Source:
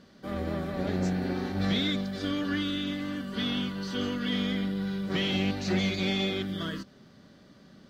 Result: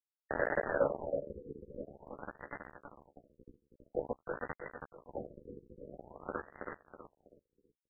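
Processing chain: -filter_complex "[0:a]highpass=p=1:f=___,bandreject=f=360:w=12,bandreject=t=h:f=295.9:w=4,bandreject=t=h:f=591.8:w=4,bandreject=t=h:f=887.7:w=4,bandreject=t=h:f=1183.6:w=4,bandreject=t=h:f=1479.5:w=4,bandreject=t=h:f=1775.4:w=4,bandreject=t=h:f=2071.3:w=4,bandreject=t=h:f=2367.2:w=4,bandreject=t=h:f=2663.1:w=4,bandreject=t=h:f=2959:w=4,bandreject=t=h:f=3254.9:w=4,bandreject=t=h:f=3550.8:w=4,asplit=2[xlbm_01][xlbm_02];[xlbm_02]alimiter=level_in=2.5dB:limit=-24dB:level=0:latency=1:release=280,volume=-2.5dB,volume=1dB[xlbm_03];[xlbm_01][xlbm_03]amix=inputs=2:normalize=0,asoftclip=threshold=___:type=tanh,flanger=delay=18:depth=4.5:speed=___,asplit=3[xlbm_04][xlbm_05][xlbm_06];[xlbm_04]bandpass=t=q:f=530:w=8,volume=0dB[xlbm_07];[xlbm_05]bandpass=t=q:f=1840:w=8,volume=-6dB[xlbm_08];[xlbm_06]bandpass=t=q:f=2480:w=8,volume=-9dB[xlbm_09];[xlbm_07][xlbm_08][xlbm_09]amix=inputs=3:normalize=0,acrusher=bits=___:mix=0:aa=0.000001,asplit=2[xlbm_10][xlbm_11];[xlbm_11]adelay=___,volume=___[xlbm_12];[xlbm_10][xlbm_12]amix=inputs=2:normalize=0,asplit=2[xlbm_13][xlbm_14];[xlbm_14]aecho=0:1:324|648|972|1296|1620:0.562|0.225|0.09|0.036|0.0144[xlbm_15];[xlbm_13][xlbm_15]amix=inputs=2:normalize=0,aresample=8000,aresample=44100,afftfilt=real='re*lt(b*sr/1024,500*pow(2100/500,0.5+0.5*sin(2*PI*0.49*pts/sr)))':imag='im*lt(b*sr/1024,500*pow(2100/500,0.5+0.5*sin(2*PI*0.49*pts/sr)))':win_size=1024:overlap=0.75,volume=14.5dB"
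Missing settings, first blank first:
79, -30.5dB, 2.5, 6, 14, -6dB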